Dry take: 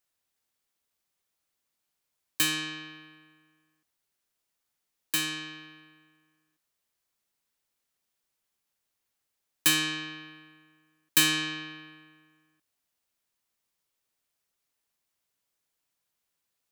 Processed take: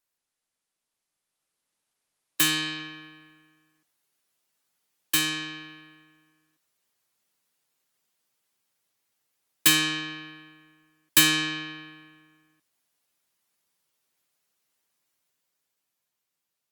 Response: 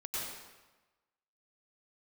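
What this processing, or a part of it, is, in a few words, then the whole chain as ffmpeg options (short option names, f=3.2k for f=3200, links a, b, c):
video call: -af "highpass=f=100:w=0.5412,highpass=f=100:w=1.3066,dynaudnorm=f=130:g=21:m=6dB,volume=-1dB" -ar 48000 -c:a libopus -b:a 24k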